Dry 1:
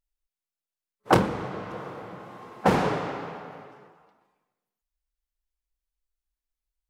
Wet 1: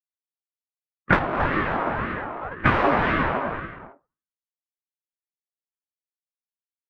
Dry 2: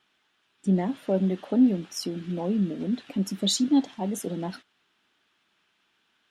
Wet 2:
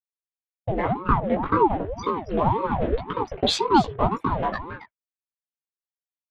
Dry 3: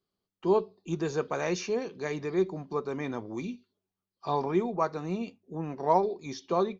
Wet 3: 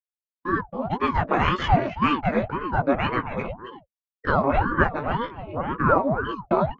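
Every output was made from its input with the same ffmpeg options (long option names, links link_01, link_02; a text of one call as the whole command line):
ffmpeg -i in.wav -filter_complex "[0:a]acrossover=split=350 3000:gain=0.2 1 0.0708[link_01][link_02][link_03];[link_01][link_02][link_03]amix=inputs=3:normalize=0,agate=range=-33dB:threshold=-44dB:ratio=3:detection=peak,acompressor=threshold=-31dB:ratio=4,anlmdn=0.0398,bandreject=frequency=680:width=12,asplit=2[link_04][link_05];[link_05]adelay=274.1,volume=-10dB,highshelf=frequency=4000:gain=-6.17[link_06];[link_04][link_06]amix=inputs=2:normalize=0,flanger=delay=16.5:depth=2.2:speed=0.34,highpass=frequency=85:width=0.5412,highpass=frequency=85:width=1.3066,equalizer=frequency=120:width=0.74:gain=-5.5,aecho=1:1:7.3:0.34,dynaudnorm=framelen=120:gausssize=9:maxgain=15dB,aeval=exprs='val(0)*sin(2*PI*440*n/s+440*0.7/1.9*sin(2*PI*1.9*n/s))':channel_layout=same,volume=5.5dB" out.wav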